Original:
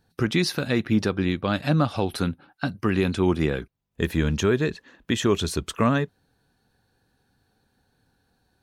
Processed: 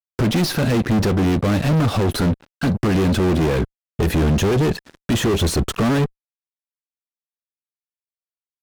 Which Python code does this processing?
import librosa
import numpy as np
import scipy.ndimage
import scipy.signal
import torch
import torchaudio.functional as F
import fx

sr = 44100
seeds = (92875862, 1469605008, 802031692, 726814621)

y = fx.fuzz(x, sr, gain_db=37.0, gate_db=-47.0)
y = fx.tilt_shelf(y, sr, db=4.5, hz=720.0)
y = y * librosa.db_to_amplitude(-5.0)